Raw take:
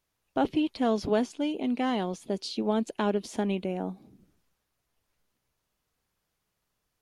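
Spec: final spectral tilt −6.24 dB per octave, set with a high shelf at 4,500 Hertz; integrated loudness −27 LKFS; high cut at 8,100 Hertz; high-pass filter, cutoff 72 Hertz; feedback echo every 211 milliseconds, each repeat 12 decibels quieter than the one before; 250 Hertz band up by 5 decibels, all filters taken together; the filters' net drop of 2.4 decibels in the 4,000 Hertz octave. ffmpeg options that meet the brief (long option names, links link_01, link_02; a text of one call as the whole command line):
ffmpeg -i in.wav -af "highpass=72,lowpass=8100,equalizer=frequency=250:width_type=o:gain=6,equalizer=frequency=4000:width_type=o:gain=-6,highshelf=frequency=4500:gain=5.5,aecho=1:1:211|422|633:0.251|0.0628|0.0157,volume=-1dB" out.wav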